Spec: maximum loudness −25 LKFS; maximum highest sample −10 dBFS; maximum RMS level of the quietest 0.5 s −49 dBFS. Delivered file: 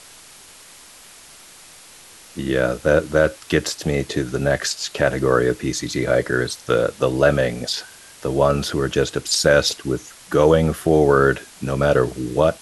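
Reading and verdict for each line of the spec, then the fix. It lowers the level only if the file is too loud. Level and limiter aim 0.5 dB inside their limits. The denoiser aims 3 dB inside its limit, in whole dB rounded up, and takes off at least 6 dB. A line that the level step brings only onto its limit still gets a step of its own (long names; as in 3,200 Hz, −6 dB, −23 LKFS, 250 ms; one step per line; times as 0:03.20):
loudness −19.5 LKFS: out of spec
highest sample −3.5 dBFS: out of spec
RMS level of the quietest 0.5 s −45 dBFS: out of spec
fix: level −6 dB
brickwall limiter −10.5 dBFS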